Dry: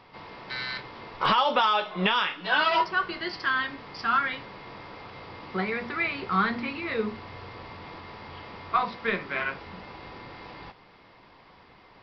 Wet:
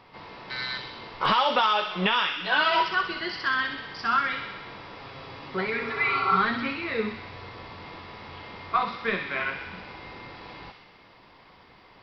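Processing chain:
delay with a high-pass on its return 63 ms, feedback 72%, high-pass 2,000 Hz, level −4.5 dB
0:05.78–0:06.34: healed spectral selection 270–1,500 Hz both
0:05.01–0:06.74: comb filter 7.4 ms, depth 57%

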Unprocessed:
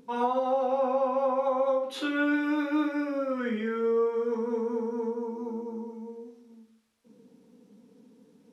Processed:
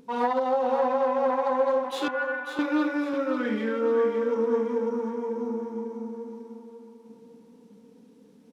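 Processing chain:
phase distortion by the signal itself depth 0.1 ms
0:02.08–0:02.59: resonant band-pass 1,500 Hz, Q 3.8
on a send: repeating echo 546 ms, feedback 41%, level −8 dB
on the sum: level +2 dB

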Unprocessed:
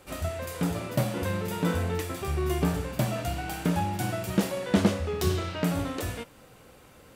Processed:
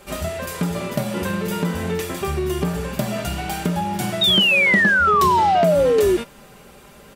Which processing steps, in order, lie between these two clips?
comb filter 5 ms, depth 62%
downward compressor 5 to 1, threshold −26 dBFS, peak gain reduction 12 dB
sound drawn into the spectrogram fall, 0:04.21–0:06.17, 350–3,800 Hz −23 dBFS
level +7 dB

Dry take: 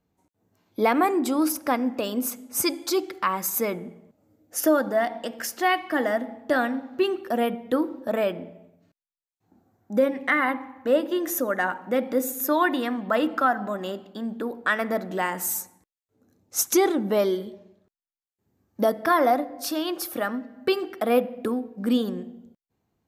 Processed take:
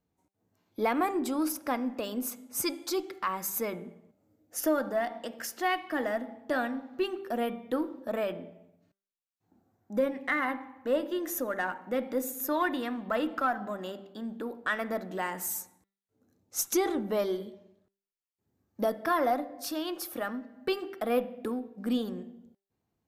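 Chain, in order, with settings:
hum removal 196.3 Hz, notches 20
in parallel at −12 dB: asymmetric clip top −30 dBFS
on the sum: level −8 dB

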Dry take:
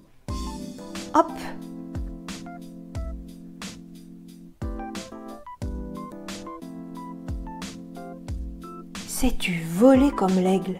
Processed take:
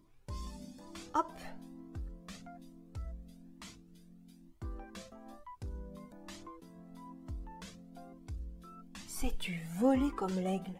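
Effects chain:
flanger whose copies keep moving one way rising 1.1 Hz
level −8.5 dB

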